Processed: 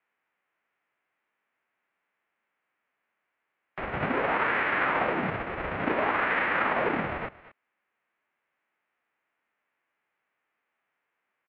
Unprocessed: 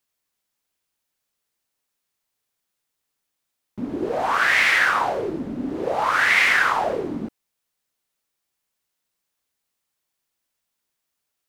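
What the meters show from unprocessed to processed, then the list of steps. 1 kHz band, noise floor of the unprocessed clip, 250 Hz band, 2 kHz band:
−5.0 dB, −80 dBFS, −4.5 dB, −9.0 dB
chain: spectral envelope flattened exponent 0.3
speech leveller within 4 dB 0.5 s
single-sideband voice off tune −220 Hz 410–2,500 Hz
on a send: single-tap delay 229 ms −20.5 dB
on the sum: one half of a high-frequency compander encoder only
level −2 dB

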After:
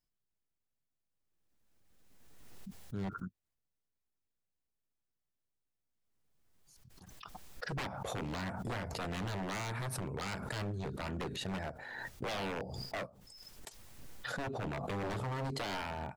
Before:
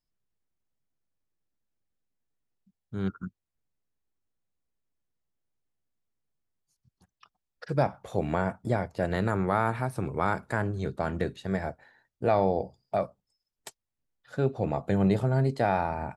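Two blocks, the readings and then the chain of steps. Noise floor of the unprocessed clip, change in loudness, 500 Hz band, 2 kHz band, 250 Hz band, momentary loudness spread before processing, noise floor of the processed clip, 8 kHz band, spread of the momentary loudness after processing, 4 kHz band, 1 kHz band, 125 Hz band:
below −85 dBFS, −10.5 dB, −13.0 dB, −5.0 dB, −11.0 dB, 9 LU, below −85 dBFS, +4.5 dB, 15 LU, +4.5 dB, −11.0 dB, −10.5 dB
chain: wave folding −26.5 dBFS
background raised ahead of every attack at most 25 dB per second
level −6 dB

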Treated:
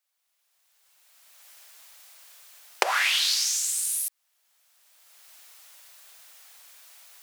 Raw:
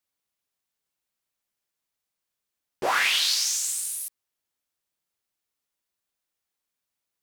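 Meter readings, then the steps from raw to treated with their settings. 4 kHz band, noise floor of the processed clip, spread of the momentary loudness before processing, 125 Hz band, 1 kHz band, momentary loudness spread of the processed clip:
−0.5 dB, −76 dBFS, 12 LU, can't be measured, −0.5 dB, 8 LU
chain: camcorder AGC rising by 20 dB per second
high-pass filter 610 Hz 24 dB per octave
parametric band 960 Hz −2.5 dB 0.77 octaves
in parallel at −2 dB: downward compressor, threshold −34 dBFS, peak gain reduction 17 dB
on the sum: level −2 dB

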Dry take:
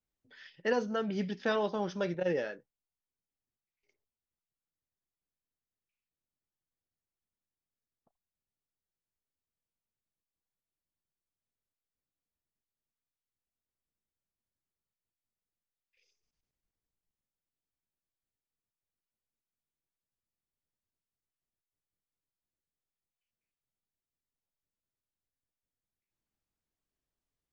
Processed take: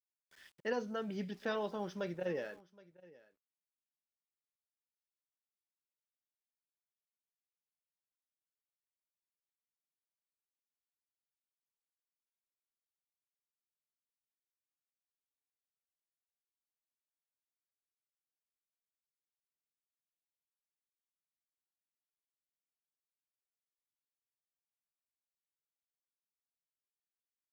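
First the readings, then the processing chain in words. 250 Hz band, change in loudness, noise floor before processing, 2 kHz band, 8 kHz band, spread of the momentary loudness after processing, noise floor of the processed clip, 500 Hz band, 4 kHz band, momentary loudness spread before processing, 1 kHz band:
−6.5 dB, −6.5 dB, below −85 dBFS, −6.5 dB, can't be measured, 6 LU, below −85 dBFS, −6.5 dB, −6.5 dB, 6 LU, −6.5 dB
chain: centre clipping without the shift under −54.5 dBFS
on a send: single-tap delay 771 ms −22 dB
on the sum: level −6.5 dB

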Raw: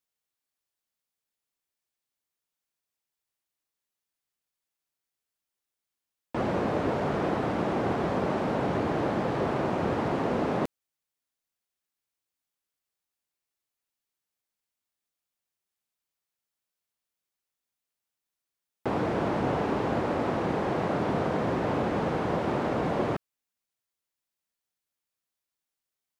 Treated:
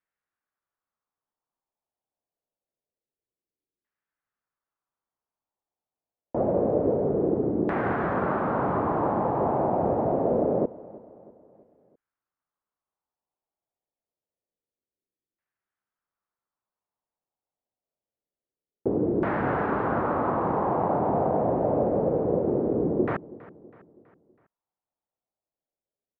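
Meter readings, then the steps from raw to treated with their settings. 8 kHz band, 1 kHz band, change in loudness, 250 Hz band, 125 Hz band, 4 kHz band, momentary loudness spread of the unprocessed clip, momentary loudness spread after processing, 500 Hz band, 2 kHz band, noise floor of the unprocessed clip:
can't be measured, +3.0 dB, +3.0 dB, +2.0 dB, +0.5 dB, below −15 dB, 2 LU, 3 LU, +4.0 dB, −1.0 dB, below −85 dBFS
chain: auto-filter low-pass saw down 0.26 Hz 360–1,800 Hz
repeating echo 325 ms, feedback 50%, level −20 dB

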